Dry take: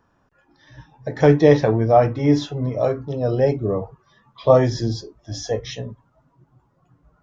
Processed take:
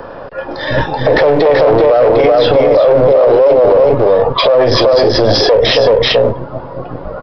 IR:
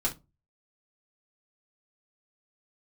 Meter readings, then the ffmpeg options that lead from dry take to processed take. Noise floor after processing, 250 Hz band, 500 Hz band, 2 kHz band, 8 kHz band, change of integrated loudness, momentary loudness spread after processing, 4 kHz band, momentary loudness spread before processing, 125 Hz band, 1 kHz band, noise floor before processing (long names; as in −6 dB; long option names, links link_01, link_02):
−28 dBFS, +4.0 dB, +12.5 dB, +14.5 dB, can't be measured, +9.5 dB, 17 LU, +20.5 dB, 18 LU, +2.0 dB, +10.5 dB, −64 dBFS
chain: -filter_complex "[0:a]acompressor=threshold=-26dB:ratio=5,aresample=11025,aeval=exprs='clip(val(0),-1,0.0106)':channel_layout=same,aresample=44100,aecho=1:1:381:0.668,acrossover=split=410|2500[link_01][link_02][link_03];[link_01]aeval=exprs='max(val(0),0)':channel_layout=same[link_04];[link_04][link_02][link_03]amix=inputs=3:normalize=0,equalizer=frequency=530:width=1.9:gain=15,alimiter=level_in=32.5dB:limit=-1dB:release=50:level=0:latency=1,volume=-1dB"